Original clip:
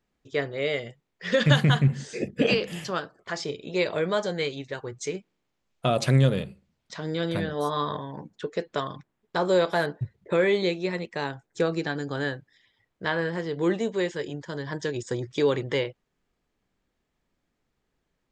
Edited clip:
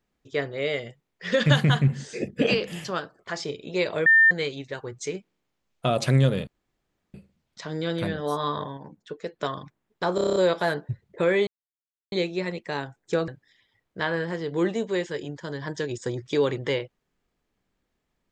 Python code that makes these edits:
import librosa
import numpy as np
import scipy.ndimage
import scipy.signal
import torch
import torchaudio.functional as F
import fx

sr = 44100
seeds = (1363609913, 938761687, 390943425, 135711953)

y = fx.edit(x, sr, fx.bleep(start_s=4.06, length_s=0.25, hz=1800.0, db=-12.5),
    fx.insert_room_tone(at_s=6.47, length_s=0.67),
    fx.clip_gain(start_s=8.1, length_s=0.62, db=-4.5),
    fx.stutter(start_s=9.48, slice_s=0.03, count=8),
    fx.insert_silence(at_s=10.59, length_s=0.65),
    fx.cut(start_s=11.75, length_s=0.58), tone=tone)